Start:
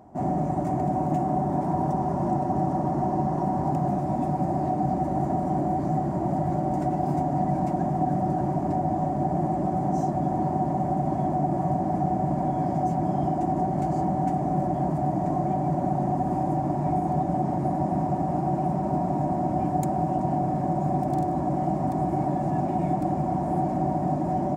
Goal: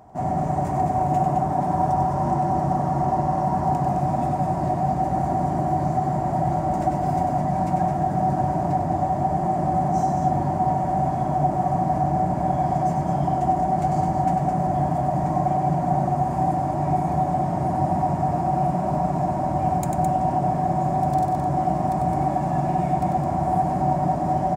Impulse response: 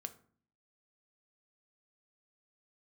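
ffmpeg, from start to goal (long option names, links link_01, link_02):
-filter_complex "[0:a]equalizer=frequency=280:width=0.69:gain=-9.5,aecho=1:1:96.21|212.8:0.501|0.501,asplit=2[link_01][link_02];[1:a]atrim=start_sample=2205[link_03];[link_02][link_03]afir=irnorm=-1:irlink=0,volume=8dB[link_04];[link_01][link_04]amix=inputs=2:normalize=0,volume=-3dB"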